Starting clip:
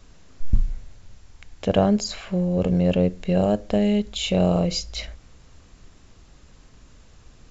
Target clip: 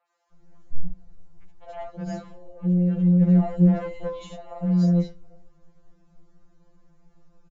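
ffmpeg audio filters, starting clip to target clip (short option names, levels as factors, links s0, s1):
-filter_complex "[0:a]firequalizer=gain_entry='entry(750,0);entry(1300,-7);entry(2600,-15)':delay=0.05:min_phase=1,acrossover=split=670|3000[s0][s1][s2];[s2]adelay=70[s3];[s0]adelay=320[s4];[s4][s1][s3]amix=inputs=3:normalize=0,acrossover=split=310|3500[s5][s6][s7];[s6]asoftclip=type=tanh:threshold=0.075[s8];[s5][s8][s7]amix=inputs=3:normalize=0,asplit=3[s9][s10][s11];[s9]afade=t=out:st=3.2:d=0.02[s12];[s10]acontrast=45,afade=t=in:st=3.2:d=0.02,afade=t=out:st=4.25:d=0.02[s13];[s11]afade=t=in:st=4.25:d=0.02[s14];[s12][s13][s14]amix=inputs=3:normalize=0,asplit=2[s15][s16];[s16]asoftclip=type=hard:threshold=0.126,volume=0.355[s17];[s15][s17]amix=inputs=2:normalize=0,aresample=16000,aresample=44100,afftfilt=real='re*2.83*eq(mod(b,8),0)':imag='im*2.83*eq(mod(b,8),0)':win_size=2048:overlap=0.75,volume=0.562"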